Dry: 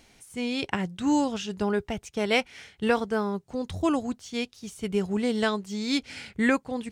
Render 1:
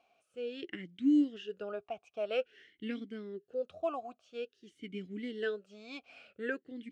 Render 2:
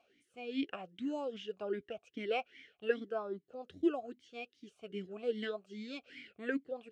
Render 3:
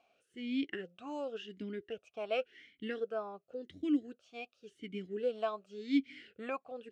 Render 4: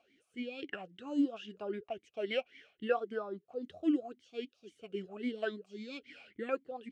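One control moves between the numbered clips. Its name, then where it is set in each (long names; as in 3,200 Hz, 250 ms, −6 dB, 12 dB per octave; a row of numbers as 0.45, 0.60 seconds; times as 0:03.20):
formant filter swept between two vowels, speed: 0.5, 2.5, 0.91, 3.7 Hertz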